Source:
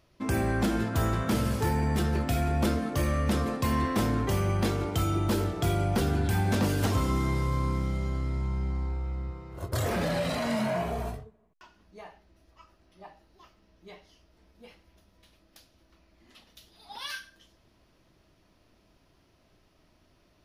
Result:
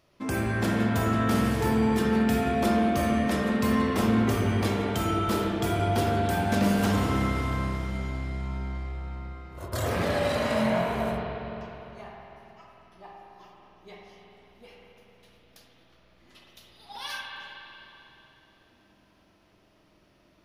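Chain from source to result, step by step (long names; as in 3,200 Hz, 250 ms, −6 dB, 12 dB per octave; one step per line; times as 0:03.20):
low-shelf EQ 98 Hz −9.5 dB
spring reverb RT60 3.2 s, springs 45/50 ms, chirp 70 ms, DRR −2 dB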